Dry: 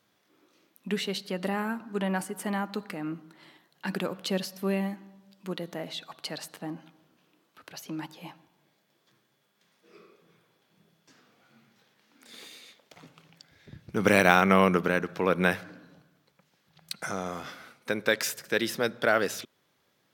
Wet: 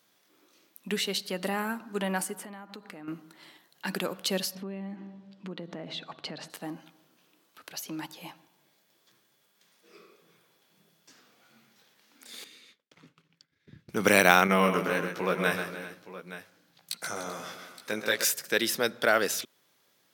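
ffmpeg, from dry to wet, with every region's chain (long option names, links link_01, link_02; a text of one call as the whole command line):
ffmpeg -i in.wav -filter_complex "[0:a]asettb=1/sr,asplit=3[link_01][link_02][link_03];[link_01]atrim=end=2.354[link_04];[link_02]atrim=start=2.35:end=3.08,asetpts=PTS-STARTPTS,afade=type=in:duration=0.004:curve=qsin,afade=type=out:start_time=0.726:duration=0.004:curve=qsin,highshelf=frequency=4400:gain=-10.5,acompressor=threshold=-41dB:ratio=4:attack=3.2:release=140:knee=1:detection=peak[link_05];[link_03]atrim=start=3.076[link_06];[link_04][link_05]acrossfade=duration=0.004:curve1=hsin:curve2=qsin[link_07];[link_07][link_06]acrossfade=duration=0.004:curve1=qsin:curve2=hsin,asettb=1/sr,asplit=3[link_08][link_09][link_10];[link_08]atrim=end=4.554[link_11];[link_09]atrim=start=4.55:end=6.5,asetpts=PTS-STARTPTS,afade=type=in:duration=0.004:curve=qsin,afade=type=out:start_time=1.946:duration=0.004:curve=qsin,lowpass=3500,lowshelf=frequency=430:gain=11.5,acompressor=threshold=-34dB:ratio=5:attack=3.2:release=140:knee=1:detection=peak[link_12];[link_10]atrim=start=6.496[link_13];[link_11][link_12]acrossfade=duration=0.004:curve1=hsin:curve2=qsin[link_14];[link_14][link_13]acrossfade=duration=0.004:curve1=qsin:curve2=hsin,asettb=1/sr,asplit=3[link_15][link_16][link_17];[link_15]atrim=end=12.444[link_18];[link_16]atrim=start=12.44:end=13.89,asetpts=PTS-STARTPTS,afade=type=in:duration=0.004:curve=qsin,afade=type=out:start_time=1.446:duration=0.004:curve=qsin,agate=range=-33dB:threshold=-53dB:ratio=3:release=100:detection=peak,lowpass=frequency=1600:poles=1,equalizer=frequency=710:width_type=o:width=0.87:gain=-14[link_19];[link_17]atrim=start=13.886[link_20];[link_18][link_19]acrossfade=duration=0.004:curve1=hsin:curve2=qsin[link_21];[link_21][link_20]acrossfade=duration=0.004:curve1=qsin:curve2=hsin,asettb=1/sr,asplit=3[link_22][link_23][link_24];[link_22]atrim=end=14.474[link_25];[link_23]atrim=start=14.47:end=18.25,asetpts=PTS-STARTPTS,afade=type=in:duration=0.004:curve=qsin,afade=type=out:start_time=3.776:duration=0.004:curve=qsin,flanger=delay=16:depth=2.6:speed=1.3,aecho=1:1:131|295|388|869:0.398|0.158|0.141|0.178,atrim=end_sample=166698[link_26];[link_24]atrim=start=18.246[link_27];[link_25][link_26]acrossfade=duration=0.004:curve1=hsin:curve2=qsin[link_28];[link_28][link_27]acrossfade=duration=0.004:curve1=qsin:curve2=hsin,highpass=frequency=190:poles=1,highshelf=frequency=4300:gain=8.5" out.wav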